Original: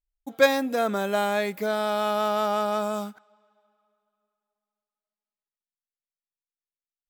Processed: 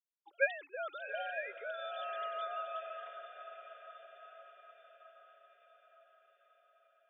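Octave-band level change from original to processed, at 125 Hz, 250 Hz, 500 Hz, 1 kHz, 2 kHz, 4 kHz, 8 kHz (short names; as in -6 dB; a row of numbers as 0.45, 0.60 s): n/a, under -40 dB, -16.0 dB, -14.5 dB, -8.0 dB, -16.5 dB, under -35 dB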